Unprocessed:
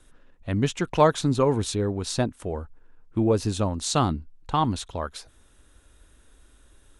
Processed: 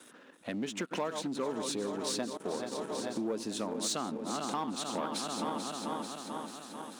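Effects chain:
feedback delay that plays each chunk backwards 220 ms, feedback 78%, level −12 dB
downward compressor 16 to 1, threshold −35 dBFS, peak gain reduction 23 dB
leveller curve on the samples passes 2
0:02.37–0:03.22: noise gate −34 dBFS, range −21 dB
Chebyshev high-pass filter 220 Hz, order 3

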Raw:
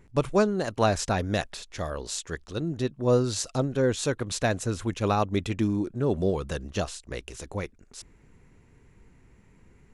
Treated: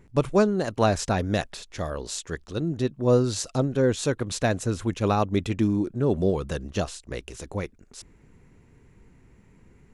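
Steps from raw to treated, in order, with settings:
parametric band 210 Hz +3 dB 3 octaves

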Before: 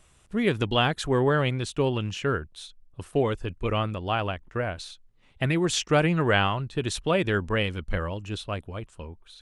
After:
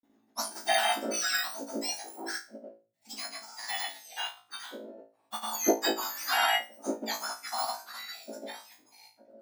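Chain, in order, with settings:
frequency axis turned over on the octave scale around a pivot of 1,500 Hz
granular cloud 100 ms, grains 20 per second, pitch spread up and down by 0 semitones
flutter between parallel walls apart 3.1 metres, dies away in 0.34 s
expander for the loud parts 1.5 to 1, over −38 dBFS

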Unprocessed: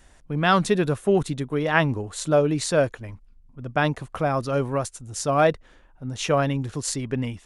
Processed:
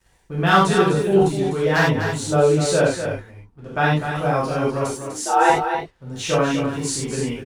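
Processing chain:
wave folding −9 dBFS
0:04.85–0:05.50: frequency shifter +190 Hz
dead-zone distortion −52 dBFS
single-tap delay 249 ms −8 dB
reverb whose tail is shaped and stops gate 120 ms flat, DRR −7 dB
level −4 dB

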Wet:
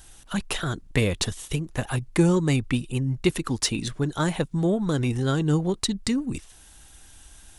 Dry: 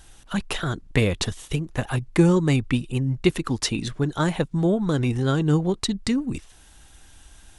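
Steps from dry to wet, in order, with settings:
high-shelf EQ 6,800 Hz +8 dB
in parallel at −11 dB: soft clipping −19 dBFS, distortion −11 dB
on the sum: level −3.5 dB

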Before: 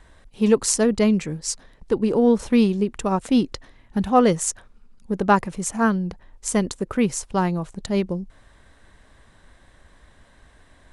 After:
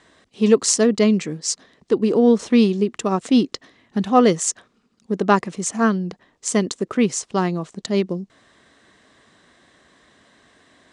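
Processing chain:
loudspeaker in its box 220–8,000 Hz, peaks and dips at 550 Hz −5 dB, 880 Hz −8 dB, 1,500 Hz −5 dB, 2,400 Hz −3 dB
level +5 dB

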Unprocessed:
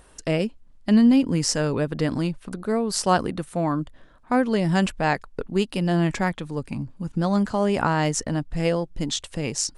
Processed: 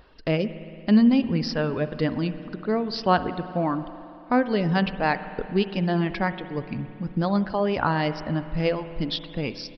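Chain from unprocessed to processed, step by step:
reverb reduction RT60 1.2 s
spring reverb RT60 2.8 s, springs 56 ms, chirp 75 ms, DRR 11.5 dB
downsampling to 11,025 Hz

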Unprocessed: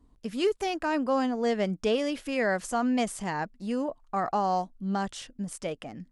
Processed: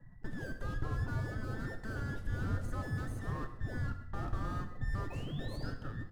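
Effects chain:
frequency inversion band by band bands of 2,000 Hz
tube saturation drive 38 dB, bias 0.7
sound drawn into the spectrogram rise, 0:05.10–0:05.70, 2,500–5,200 Hz −39 dBFS
in parallel at −6 dB: sample-and-hold swept by an LFO 39×, swing 60% 2.3 Hz
on the sum: downward compressor 2 to 1, threshold −45 dBFS, peak gain reduction 7 dB
drawn EQ curve 120 Hz 0 dB, 230 Hz −10 dB, 1,200 Hz −17 dB, 2,500 Hz −27 dB
repeating echo 135 ms, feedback 51%, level −18 dB
on a send at −6 dB: convolution reverb, pre-delay 3 ms
on the sum: one half of a high-frequency compander decoder only
level +16.5 dB

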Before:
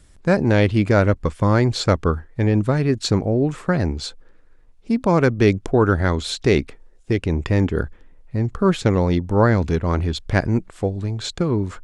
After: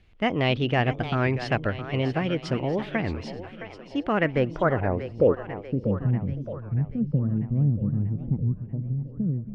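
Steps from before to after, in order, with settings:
speed change +24%
low-pass filter sweep 3,000 Hz → 180 Hz, 0:04.03–0:06.01
echo with a time of its own for lows and highs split 340 Hz, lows 274 ms, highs 639 ms, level −11 dB
wow of a warped record 33 1/3 rpm, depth 250 cents
level −8 dB

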